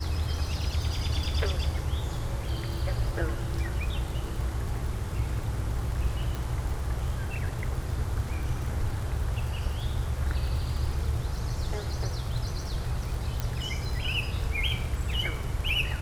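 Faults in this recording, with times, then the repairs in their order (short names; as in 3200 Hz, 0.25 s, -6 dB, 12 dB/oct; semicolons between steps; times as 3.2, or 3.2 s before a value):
crackle 57/s -34 dBFS
6.35 pop
13.4 pop -15 dBFS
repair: de-click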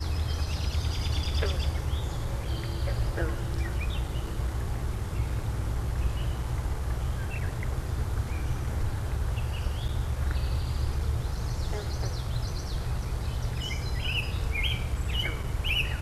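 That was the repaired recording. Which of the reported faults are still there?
6.35 pop
13.4 pop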